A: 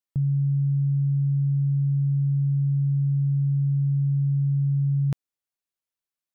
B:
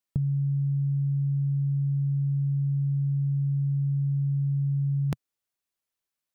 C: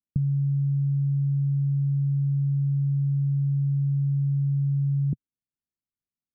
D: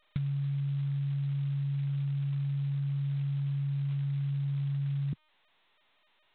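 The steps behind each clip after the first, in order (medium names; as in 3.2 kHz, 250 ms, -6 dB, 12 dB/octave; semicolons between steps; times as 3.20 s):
dynamic bell 130 Hz, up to -8 dB, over -38 dBFS, Q 3.3; trim +3 dB
four-pole ladder low-pass 340 Hz, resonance 25%; trim +6.5 dB
trim -7.5 dB; G.726 16 kbps 8 kHz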